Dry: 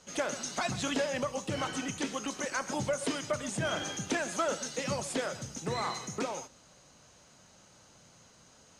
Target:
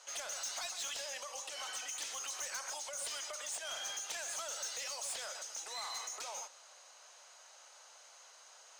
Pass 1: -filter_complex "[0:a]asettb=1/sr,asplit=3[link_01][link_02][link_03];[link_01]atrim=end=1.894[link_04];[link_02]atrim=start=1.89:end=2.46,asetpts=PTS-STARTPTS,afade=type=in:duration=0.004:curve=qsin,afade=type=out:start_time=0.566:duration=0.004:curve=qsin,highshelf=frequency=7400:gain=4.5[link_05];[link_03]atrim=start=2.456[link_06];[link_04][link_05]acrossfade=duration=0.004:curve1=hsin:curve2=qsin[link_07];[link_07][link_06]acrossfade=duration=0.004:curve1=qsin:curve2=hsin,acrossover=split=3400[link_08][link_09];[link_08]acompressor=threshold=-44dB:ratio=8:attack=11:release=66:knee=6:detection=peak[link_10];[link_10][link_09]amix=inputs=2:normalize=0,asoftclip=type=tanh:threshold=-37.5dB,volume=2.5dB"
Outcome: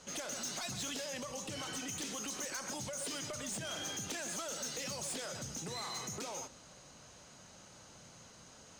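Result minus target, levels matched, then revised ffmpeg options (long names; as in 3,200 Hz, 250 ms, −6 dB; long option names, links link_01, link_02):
500 Hz band +5.0 dB
-filter_complex "[0:a]asettb=1/sr,asplit=3[link_01][link_02][link_03];[link_01]atrim=end=1.894[link_04];[link_02]atrim=start=1.89:end=2.46,asetpts=PTS-STARTPTS,afade=type=in:duration=0.004:curve=qsin,afade=type=out:start_time=0.566:duration=0.004:curve=qsin,highshelf=frequency=7400:gain=4.5[link_05];[link_03]atrim=start=2.456[link_06];[link_04][link_05]acrossfade=duration=0.004:curve1=hsin:curve2=qsin[link_07];[link_07][link_06]acrossfade=duration=0.004:curve1=qsin:curve2=hsin,acrossover=split=3400[link_08][link_09];[link_08]acompressor=threshold=-44dB:ratio=8:attack=11:release=66:knee=6:detection=peak,highpass=frequency=630:width=0.5412,highpass=frequency=630:width=1.3066[link_10];[link_10][link_09]amix=inputs=2:normalize=0,asoftclip=type=tanh:threshold=-37.5dB,volume=2.5dB"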